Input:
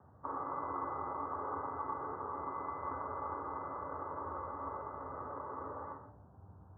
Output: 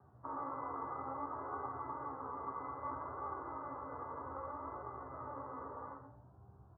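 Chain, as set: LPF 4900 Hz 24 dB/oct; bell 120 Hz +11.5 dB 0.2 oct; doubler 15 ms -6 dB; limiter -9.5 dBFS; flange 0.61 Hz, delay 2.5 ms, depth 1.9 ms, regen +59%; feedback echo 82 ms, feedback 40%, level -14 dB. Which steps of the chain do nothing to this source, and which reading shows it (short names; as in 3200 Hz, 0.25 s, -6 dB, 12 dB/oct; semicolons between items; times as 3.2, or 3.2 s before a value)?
LPF 4900 Hz: input band ends at 2000 Hz; limiter -9.5 dBFS: input peak -25.0 dBFS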